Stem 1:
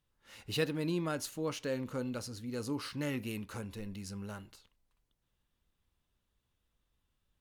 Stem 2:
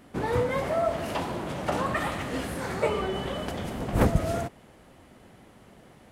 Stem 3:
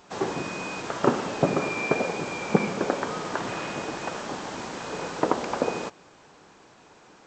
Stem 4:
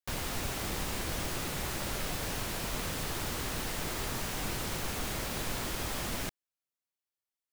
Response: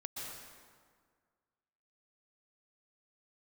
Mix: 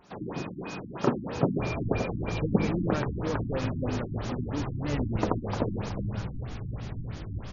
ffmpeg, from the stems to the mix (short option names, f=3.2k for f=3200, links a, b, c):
-filter_complex "[0:a]adelay=1850,volume=0.5dB[a];[1:a]adelay=1000,volume=-16dB[b];[2:a]bass=f=250:g=3,treble=f=4k:g=7,volume=-6.5dB,asplit=2[c][d];[d]volume=-9.5dB[e];[3:a]equalizer=f=110:w=0.94:g=14.5,flanger=delay=16:depth=2.8:speed=0.63,adelay=1500,volume=-10dB,asplit=2[f][g];[g]volume=-3dB[h];[4:a]atrim=start_sample=2205[i];[h][i]afir=irnorm=-1:irlink=0[j];[e]aecho=0:1:371|742|1113|1484|1855|2226:1|0.45|0.202|0.0911|0.041|0.0185[k];[a][b][c][f][j][k]amix=inputs=6:normalize=0,lowshelf=f=260:g=6,afftfilt=real='re*lt(b*sr/1024,310*pow(7200/310,0.5+0.5*sin(2*PI*3.1*pts/sr)))':imag='im*lt(b*sr/1024,310*pow(7200/310,0.5+0.5*sin(2*PI*3.1*pts/sr)))':win_size=1024:overlap=0.75"